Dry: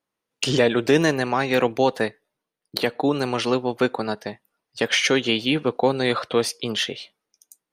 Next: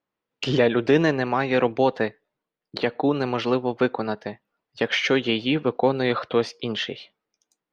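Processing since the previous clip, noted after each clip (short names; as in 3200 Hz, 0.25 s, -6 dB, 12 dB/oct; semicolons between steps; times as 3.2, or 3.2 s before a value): air absorption 190 m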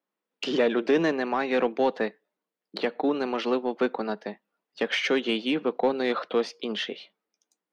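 elliptic high-pass 180 Hz, stop band 40 dB; in parallel at -4.5 dB: soft clip -18.5 dBFS, distortion -11 dB; on the sum: gain -6 dB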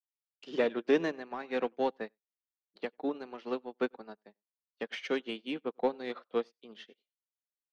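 echo 94 ms -16.5 dB; upward expander 2.5:1, over -45 dBFS; gain -2.5 dB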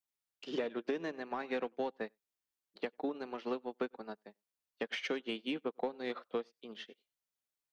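compressor 12:1, threshold -35 dBFS, peak gain reduction 15 dB; gain +2.5 dB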